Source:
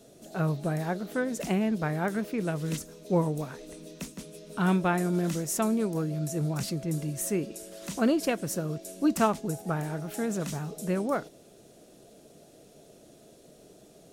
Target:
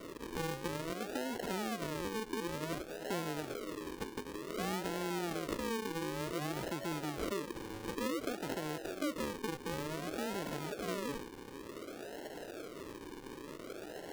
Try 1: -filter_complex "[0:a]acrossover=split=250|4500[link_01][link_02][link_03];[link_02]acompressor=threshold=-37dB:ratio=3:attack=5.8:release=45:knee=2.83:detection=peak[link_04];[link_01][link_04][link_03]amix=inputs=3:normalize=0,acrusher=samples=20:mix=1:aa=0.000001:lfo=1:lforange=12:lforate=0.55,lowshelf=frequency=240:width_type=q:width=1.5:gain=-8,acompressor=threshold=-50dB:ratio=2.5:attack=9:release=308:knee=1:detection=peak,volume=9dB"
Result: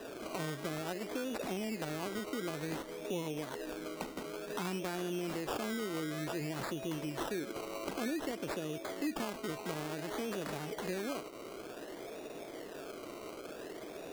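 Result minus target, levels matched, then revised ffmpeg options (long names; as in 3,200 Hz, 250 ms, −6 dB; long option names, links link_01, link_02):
sample-and-hold swept by an LFO: distortion −8 dB
-filter_complex "[0:a]acrossover=split=250|4500[link_01][link_02][link_03];[link_02]acompressor=threshold=-37dB:ratio=3:attack=5.8:release=45:knee=2.83:detection=peak[link_04];[link_01][link_04][link_03]amix=inputs=3:normalize=0,acrusher=samples=52:mix=1:aa=0.000001:lfo=1:lforange=31.2:lforate=0.55,lowshelf=frequency=240:width_type=q:width=1.5:gain=-8,acompressor=threshold=-50dB:ratio=2.5:attack=9:release=308:knee=1:detection=peak,volume=9dB"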